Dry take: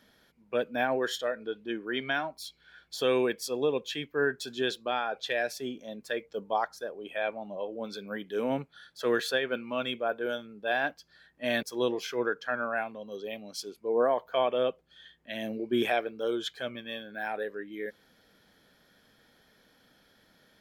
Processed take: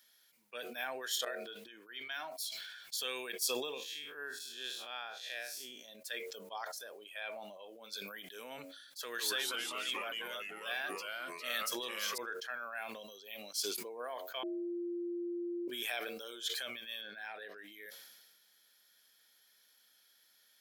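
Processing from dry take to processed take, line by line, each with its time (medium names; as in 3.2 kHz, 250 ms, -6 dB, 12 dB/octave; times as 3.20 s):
1.25–2.31 s: fade in quadratic, from -23.5 dB
3.74–5.84 s: spectral blur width 121 ms
9.02–12.18 s: ever faster or slower copies 165 ms, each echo -2 st, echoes 3
14.43–15.68 s: bleep 347 Hz -13 dBFS
17.01–17.58 s: Savitzky-Golay filter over 15 samples
whole clip: differentiator; de-hum 91.73 Hz, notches 8; decay stretcher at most 36 dB/s; trim +3.5 dB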